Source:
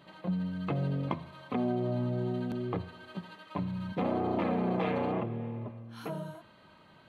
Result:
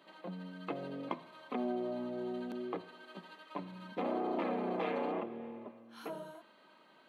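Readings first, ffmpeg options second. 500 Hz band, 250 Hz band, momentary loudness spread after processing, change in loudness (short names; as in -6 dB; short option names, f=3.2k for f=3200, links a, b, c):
-3.5 dB, -7.0 dB, 15 LU, -6.0 dB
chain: -af "highpass=f=240:w=0.5412,highpass=f=240:w=1.3066,volume=-3.5dB"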